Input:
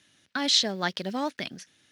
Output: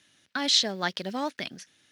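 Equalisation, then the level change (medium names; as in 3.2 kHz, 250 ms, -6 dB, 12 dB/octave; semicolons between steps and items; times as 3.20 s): bass shelf 330 Hz -3 dB; 0.0 dB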